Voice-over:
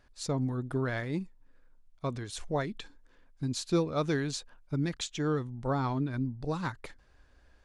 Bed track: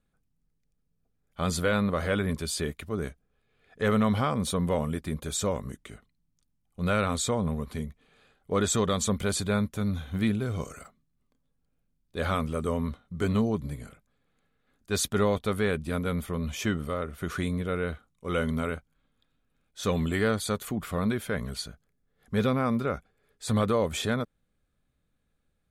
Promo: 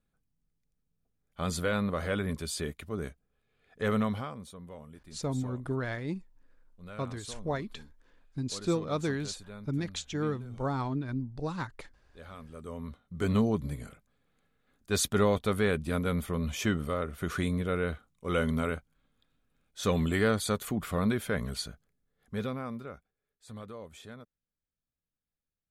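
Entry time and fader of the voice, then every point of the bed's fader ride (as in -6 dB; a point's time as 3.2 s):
4.95 s, -1.5 dB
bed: 4.01 s -4 dB
4.52 s -19.5 dB
12.33 s -19.5 dB
13.34 s -0.5 dB
21.73 s -0.5 dB
23.33 s -19 dB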